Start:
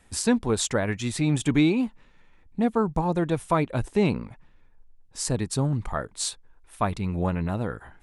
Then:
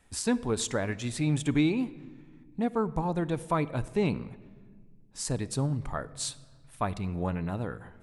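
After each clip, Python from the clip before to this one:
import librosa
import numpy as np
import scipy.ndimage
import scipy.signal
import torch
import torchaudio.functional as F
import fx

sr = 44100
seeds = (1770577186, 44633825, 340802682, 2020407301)

y = fx.room_shoebox(x, sr, seeds[0], volume_m3=2100.0, walls='mixed', distance_m=0.32)
y = y * librosa.db_to_amplitude(-5.0)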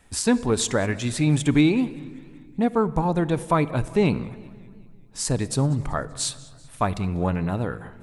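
y = fx.echo_warbled(x, sr, ms=192, feedback_pct=55, rate_hz=2.8, cents=155, wet_db=-23.0)
y = y * librosa.db_to_amplitude(7.0)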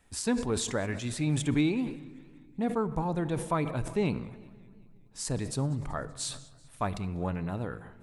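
y = fx.sustainer(x, sr, db_per_s=94.0)
y = y * librosa.db_to_amplitude(-8.5)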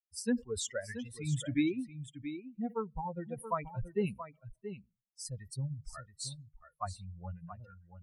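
y = fx.bin_expand(x, sr, power=3.0)
y = y + 10.0 ** (-11.0 / 20.0) * np.pad(y, (int(678 * sr / 1000.0), 0))[:len(y)]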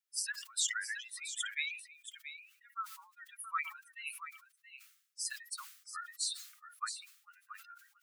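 y = scipy.signal.sosfilt(scipy.signal.butter(16, 1200.0, 'highpass', fs=sr, output='sos'), x)
y = fx.sustainer(y, sr, db_per_s=96.0)
y = y * librosa.db_to_amplitude(5.5)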